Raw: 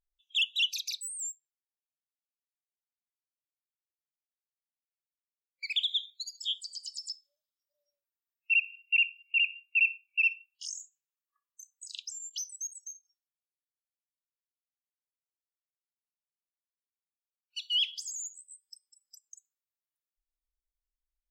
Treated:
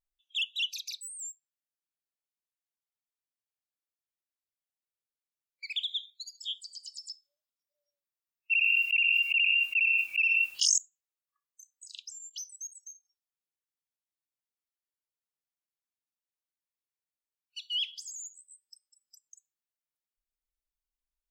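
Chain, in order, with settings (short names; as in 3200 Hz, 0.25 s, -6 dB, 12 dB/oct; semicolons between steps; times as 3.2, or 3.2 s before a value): 8.51–10.78 fast leveller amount 100%; gain -3.5 dB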